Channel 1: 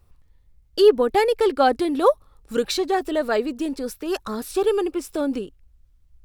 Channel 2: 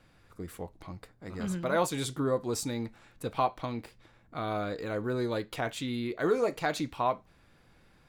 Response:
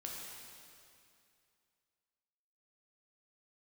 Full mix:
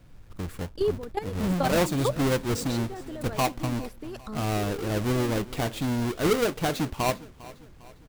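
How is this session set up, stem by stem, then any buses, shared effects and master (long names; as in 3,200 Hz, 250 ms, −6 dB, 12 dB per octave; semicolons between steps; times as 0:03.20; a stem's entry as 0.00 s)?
−9.5 dB, 0.00 s, no send, no echo send, low-shelf EQ 110 Hz +10 dB; output level in coarse steps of 15 dB
−2.0 dB, 0.00 s, no send, echo send −19.5 dB, each half-wave held at its own peak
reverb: not used
echo: repeating echo 402 ms, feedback 47%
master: low-shelf EQ 210 Hz +8.5 dB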